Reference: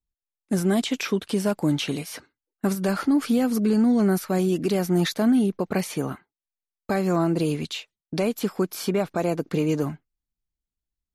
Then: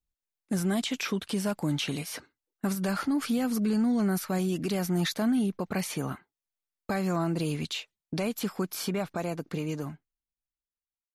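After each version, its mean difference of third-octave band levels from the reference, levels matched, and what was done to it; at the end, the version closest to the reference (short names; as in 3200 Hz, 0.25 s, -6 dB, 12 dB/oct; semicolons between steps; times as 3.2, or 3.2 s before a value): 2.5 dB: ending faded out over 2.49 s; dynamic EQ 400 Hz, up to -6 dB, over -33 dBFS, Q 0.95; in parallel at 0 dB: limiter -22.5 dBFS, peak gain reduction 8 dB; on the sum: gain -7 dB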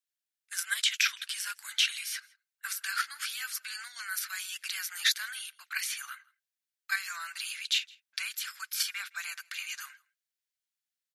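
18.5 dB: elliptic high-pass 1500 Hz, stop band 70 dB; in parallel at +2 dB: level quantiser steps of 17 dB; on the sum: outdoor echo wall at 28 m, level -25 dB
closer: first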